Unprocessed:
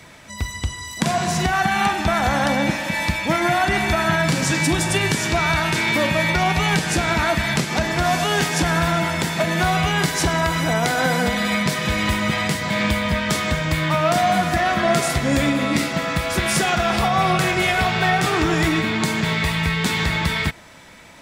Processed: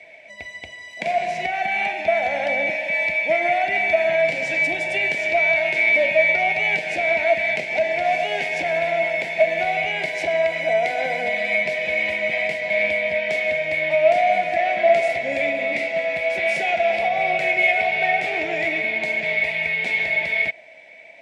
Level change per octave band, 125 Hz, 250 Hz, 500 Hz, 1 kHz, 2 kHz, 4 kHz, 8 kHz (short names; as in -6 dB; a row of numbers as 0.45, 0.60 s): -21.5 dB, -16.0 dB, +3.5 dB, -3.0 dB, +2.0 dB, -8.5 dB, under -15 dB